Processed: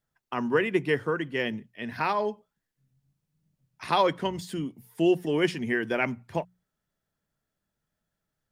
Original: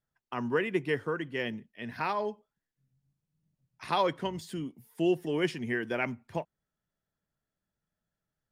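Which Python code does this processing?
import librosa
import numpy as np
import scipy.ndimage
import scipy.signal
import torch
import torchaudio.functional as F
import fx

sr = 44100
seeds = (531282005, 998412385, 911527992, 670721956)

y = fx.hum_notches(x, sr, base_hz=60, count=3)
y = y * 10.0 ** (4.5 / 20.0)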